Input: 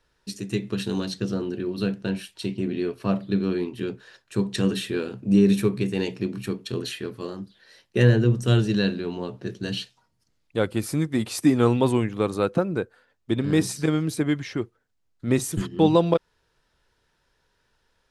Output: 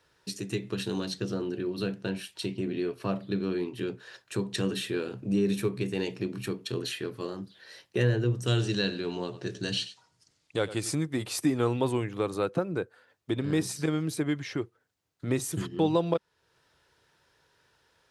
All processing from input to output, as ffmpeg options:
ffmpeg -i in.wav -filter_complex "[0:a]asettb=1/sr,asplit=3[link_01][link_02][link_03];[link_01]atrim=end=8.464[link_04];[link_02]atrim=start=8.46:end=10.95,asetpts=PTS-STARTPTS,afade=type=in:duration=0.004:curve=qsin,afade=type=out:start_time=2.486:duration=0.004:curve=qsin,lowpass=frequency=9000:width=0.5412,lowpass=frequency=9000:width=1.3066,highshelf=frequency=3500:gain=9,aecho=1:1:94:0.168,atrim=end_sample=109809[link_05];[link_03]atrim=start=10.946[link_06];[link_04][link_05]acrossfade=duration=0.004:curve1=hsin:curve2=qsin[link_07];[link_07][link_06]acrossfade=duration=0.004:curve1=qsin:curve2=hsin,highpass=90,equalizer=frequency=220:width=7.2:gain=-12.5,acompressor=threshold=-43dB:ratio=1.5,volume=3.5dB" out.wav

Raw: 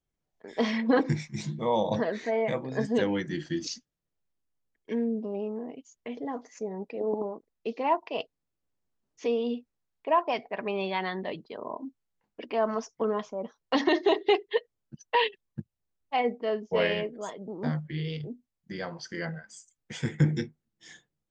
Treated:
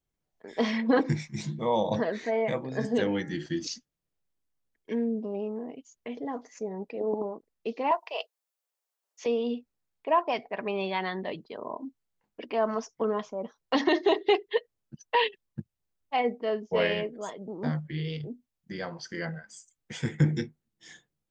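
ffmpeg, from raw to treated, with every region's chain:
ffmpeg -i in.wav -filter_complex "[0:a]asettb=1/sr,asplit=3[link_01][link_02][link_03];[link_01]atrim=end=2.694[link_04];[link_02]atrim=start=2.69:end=3.46,asetpts=PTS-STARTPTS,afade=type=in:duration=0.004:curve=qsin,afade=type=out:start_time=0.766:duration=0.004:curve=qsin,bandreject=frequency=1000:width=17,bandreject=frequency=73.24:width_type=h:width=4,bandreject=frequency=146.48:width_type=h:width=4,bandreject=frequency=219.72:width_type=h:width=4,bandreject=frequency=292.96:width_type=h:width=4,bandreject=frequency=366.2:width_type=h:width=4,bandreject=frequency=439.44:width_type=h:width=4,bandreject=frequency=512.68:width_type=h:width=4,bandreject=frequency=585.92:width_type=h:width=4,bandreject=frequency=659.16:width_type=h:width=4,bandreject=frequency=732.4:width_type=h:width=4,bandreject=frequency=805.64:width_type=h:width=4,bandreject=frequency=878.88:width_type=h:width=4,bandreject=frequency=952.12:width_type=h:width=4,bandreject=frequency=1025.36:width_type=h:width=4,bandreject=frequency=1098.6:width_type=h:width=4,bandreject=frequency=1171.84:width_type=h:width=4,bandreject=frequency=1245.08:width_type=h:width=4,bandreject=frequency=1318.32:width_type=h:width=4,bandreject=frequency=1391.56:width_type=h:width=4,bandreject=frequency=1464.8:width_type=h:width=4,bandreject=frequency=1538.04:width_type=h:width=4,bandreject=frequency=1611.28:width_type=h:width=4,bandreject=frequency=1684.52:width_type=h:width=4,bandreject=frequency=1757.76:width_type=h:width=4,bandreject=frequency=1831:width_type=h:width=4,bandreject=frequency=1904.24:width_type=h:width=4,bandreject=frequency=1977.48:width_type=h:width=4,bandreject=frequency=2050.72:width_type=h:width=4,bandreject=frequency=2123.96:width_type=h:width=4[link_05];[link_03]atrim=start=3.456[link_06];[link_04][link_05]acrossfade=duration=0.004:curve1=hsin:curve2=qsin[link_07];[link_07][link_06]acrossfade=duration=0.004:curve1=qsin:curve2=hsin,asettb=1/sr,asplit=3[link_08][link_09][link_10];[link_08]atrim=end=7.914[link_11];[link_09]atrim=start=7.91:end=9.26,asetpts=PTS-STARTPTS,afade=type=in:duration=0.004:curve=qsin,afade=type=out:start_time=1.346:duration=0.004:curve=qsin,highpass=frequency=530:width=0.5412,highpass=frequency=530:width=1.3066,highshelf=frequency=6100:gain=9[link_12];[link_10]atrim=start=9.256[link_13];[link_11][link_12]acrossfade=duration=0.004:curve1=hsin:curve2=qsin[link_14];[link_14][link_13]acrossfade=duration=0.004:curve1=qsin:curve2=hsin" out.wav

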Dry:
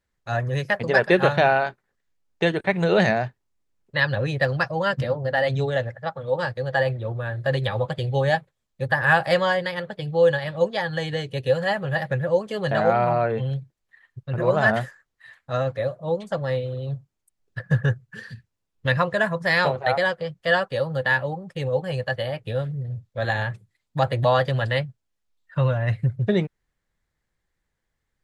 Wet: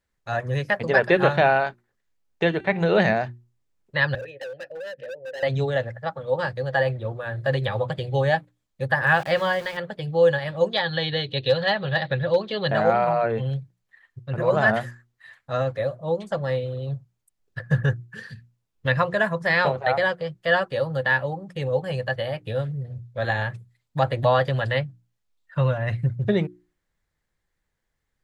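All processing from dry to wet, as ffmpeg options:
ffmpeg -i in.wav -filter_complex "[0:a]asettb=1/sr,asplit=3[link_01][link_02][link_03];[link_01]atrim=end=2.434[link_04];[link_02]atrim=start=2.43:end=2.95,asetpts=PTS-STARTPTS,afade=type=in:duration=0.004:curve=qsin,afade=type=out:start_time=0.516:duration=0.004:curve=qsin,lowpass=5800,bandreject=frequency=391.6:width_type=h:width=4,bandreject=frequency=783.2:width_type=h:width=4,bandreject=frequency=1174.8:width_type=h:width=4,bandreject=frequency=1566.4:width_type=h:width=4,bandreject=frequency=1958:width_type=h:width=4,bandreject=frequency=2349.6:width_type=h:width=4,bandreject=frequency=2741.2:width_type=h:width=4,bandreject=frequency=3132.8:width_type=h:width=4,bandreject=frequency=3524.4:width_type=h:width=4,bandreject=frequency=3916:width_type=h:width=4,bandreject=frequency=4307.6:width_type=h:width=4,bandreject=frequency=4699.2:width_type=h:width=4,bandreject=frequency=5090.8:width_type=h:width=4,bandreject=frequency=5482.4:width_type=h:width=4,bandreject=frequency=5874:width_type=h:width=4,bandreject=frequency=6265.6:width_type=h:width=4,bandreject=frequency=6657.2:width_type=h:width=4,bandreject=frequency=7048.8:width_type=h:width=4,bandreject=frequency=7440.4:width_type=h:width=4,bandreject=frequency=7832:width_type=h:width=4,bandreject=frequency=8223.6:width_type=h:width=4,bandreject=frequency=8615.2:width_type=h:width=4,bandreject=frequency=9006.8:width_type=h:width=4,bandreject=frequency=9398.4:width_type=h:width=4,bandreject=frequency=9790:width_type=h:width=4,bandreject=frequency=10181.6:width_type=h:width=4,bandreject=frequency=10573.2:width_type=h:width=4,bandreject=frequency=10964.8:width_type=h:width=4,bandreject=frequency=11356.4:width_type=h:width=4,bandreject=frequency=11748:width_type=h:width=4[link_05];[link_03]atrim=start=2.946[link_06];[link_04][link_05]acrossfade=duration=0.004:curve1=hsin:curve2=qsin[link_07];[link_07][link_06]acrossfade=duration=0.004:curve1=qsin:curve2=hsin,asettb=1/sr,asplit=3[link_08][link_09][link_10];[link_08]atrim=end=4.154[link_11];[link_09]atrim=start=4.15:end=5.43,asetpts=PTS-STARTPTS,afade=type=in:duration=0.004:curve=qsin,afade=type=out:start_time=1.276:duration=0.004:curve=qsin,asplit=3[link_12][link_13][link_14];[link_12]bandpass=frequency=530:width_type=q:width=8,volume=0dB[link_15];[link_13]bandpass=frequency=1840:width_type=q:width=8,volume=-6dB[link_16];[link_14]bandpass=frequency=2480:width_type=q:width=8,volume=-9dB[link_17];[link_15][link_16][link_17]amix=inputs=3:normalize=0,asoftclip=type=hard:threshold=-32dB[link_18];[link_10]atrim=start=5.426[link_19];[link_11][link_18]acrossfade=duration=0.004:curve1=hsin:curve2=qsin[link_20];[link_20][link_19]acrossfade=duration=0.004:curve1=qsin:curve2=hsin,asettb=1/sr,asplit=3[link_21][link_22][link_23];[link_21]atrim=end=9.074[link_24];[link_22]atrim=start=9.07:end=9.77,asetpts=PTS-STARTPTS,afade=type=in:duration=0.004:curve=qsin,afade=type=out:start_time=0.696:duration=0.004:curve=qsin,equalizer=frequency=570:width=0.4:gain=-2,aeval=exprs='val(0)*gte(abs(val(0)),0.02)':channel_layout=same[link_25];[link_23]atrim=start=9.766[link_26];[link_24][link_25]acrossfade=duration=0.004:curve1=hsin:curve2=qsin[link_27];[link_27][link_26]acrossfade=duration=0.004:curve1=qsin:curve2=hsin,asettb=1/sr,asplit=3[link_28][link_29][link_30];[link_28]atrim=end=10.734[link_31];[link_29]atrim=start=10.73:end=12.68,asetpts=PTS-STARTPTS,afade=type=in:duration=0.004:curve=qsin,afade=type=out:start_time=1.946:duration=0.004:curve=qsin,lowpass=frequency=3900:width_type=q:width=7.7,asoftclip=type=hard:threshold=-11.5dB[link_32];[link_30]atrim=start=12.676[link_33];[link_31][link_32]acrossfade=duration=0.004:curve1=hsin:curve2=qsin[link_34];[link_34][link_33]acrossfade=duration=0.004:curve1=qsin:curve2=hsin,bandreject=frequency=60:width_type=h:width=6,bandreject=frequency=120:width_type=h:width=6,bandreject=frequency=180:width_type=h:width=6,bandreject=frequency=240:width_type=h:width=6,bandreject=frequency=300:width_type=h:width=6,bandreject=frequency=360:width_type=h:width=6,acrossover=split=4200[link_35][link_36];[link_36]acompressor=threshold=-48dB:ratio=4:attack=1:release=60[link_37];[link_35][link_37]amix=inputs=2:normalize=0" out.wav

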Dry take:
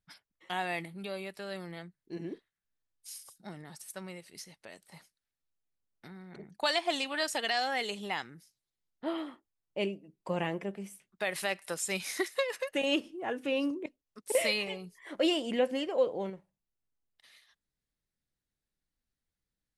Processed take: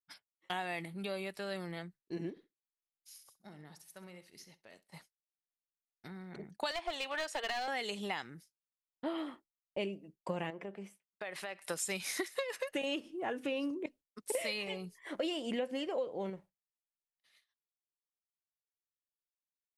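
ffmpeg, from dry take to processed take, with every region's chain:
ffmpeg -i in.wav -filter_complex "[0:a]asettb=1/sr,asplit=3[link_01][link_02][link_03];[link_01]atrim=end=2.304[link_04];[link_02]atrim=start=2.3:end=4.88,asetpts=PTS-STARTPTS,afade=type=in:duration=0.004:curve=qsin,afade=type=out:start_time=2.576:duration=0.004:curve=qsin,acompressor=threshold=-52dB:ratio=2.5:attack=3.2:release=140:knee=1:detection=peak,equalizer=frequency=8400:width=4.3:gain=-8,aecho=1:1:66|132|198|264:0.251|0.098|0.0382|0.0149,atrim=end_sample=113778[link_05];[link_03]atrim=start=4.876[link_06];[link_04][link_05]acrossfade=duration=0.004:curve1=hsin:curve2=qsin[link_07];[link_07][link_06]acrossfade=duration=0.004:curve1=qsin:curve2=hsin,asettb=1/sr,asplit=3[link_08][link_09][link_10];[link_08]atrim=end=6.714[link_11];[link_09]atrim=start=6.71:end=7.68,asetpts=PTS-STARTPTS,afade=type=in:duration=0.004:curve=qsin,afade=type=out:start_time=0.966:duration=0.004:curve=qsin,highpass=frequency=380:width=0.5412,highpass=frequency=380:width=1.3066,aemphasis=mode=reproduction:type=50kf,aeval=exprs='clip(val(0),-1,0.0224)':channel_layout=same[link_12];[link_10]atrim=start=7.676[link_13];[link_11][link_12]acrossfade=duration=0.004:curve1=hsin:curve2=qsin[link_14];[link_14][link_13]acrossfade=duration=0.004:curve1=qsin:curve2=hsin,asettb=1/sr,asplit=3[link_15][link_16][link_17];[link_15]atrim=end=10.504[link_18];[link_16]atrim=start=10.5:end=11.61,asetpts=PTS-STARTPTS,afade=type=in:duration=0.004:curve=qsin,afade=type=out:start_time=1.106:duration=0.004:curve=qsin,lowpass=frequency=2100:poles=1,lowshelf=frequency=240:gain=-11,acompressor=threshold=-40dB:ratio=3:attack=3.2:release=140:knee=1:detection=peak[link_19];[link_17]atrim=start=11.606[link_20];[link_18][link_19]acrossfade=duration=0.004:curve1=hsin:curve2=qsin[link_21];[link_21][link_20]acrossfade=duration=0.004:curve1=qsin:curve2=hsin,agate=range=-33dB:threshold=-51dB:ratio=3:detection=peak,acompressor=threshold=-34dB:ratio=6,volume=1dB" out.wav

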